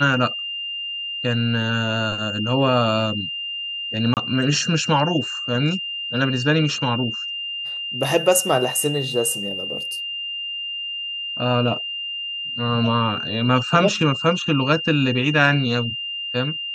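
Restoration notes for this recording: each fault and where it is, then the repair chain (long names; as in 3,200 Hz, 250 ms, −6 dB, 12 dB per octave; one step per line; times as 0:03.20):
whistle 2,800 Hz −26 dBFS
0:04.14–0:04.17: drop-out 28 ms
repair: notch filter 2,800 Hz, Q 30
repair the gap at 0:04.14, 28 ms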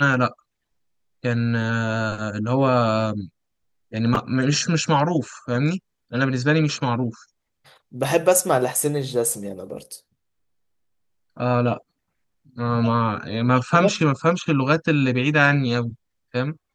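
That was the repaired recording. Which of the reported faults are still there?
none of them is left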